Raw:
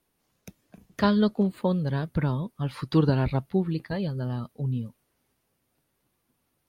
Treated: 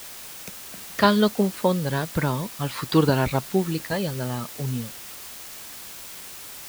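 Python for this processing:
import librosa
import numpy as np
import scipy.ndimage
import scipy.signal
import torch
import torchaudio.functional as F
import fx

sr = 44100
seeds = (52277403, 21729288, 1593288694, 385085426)

y = fx.low_shelf(x, sr, hz=320.0, db=-10.5)
y = fx.quant_dither(y, sr, seeds[0], bits=8, dither='triangular')
y = y * 10.0 ** (8.5 / 20.0)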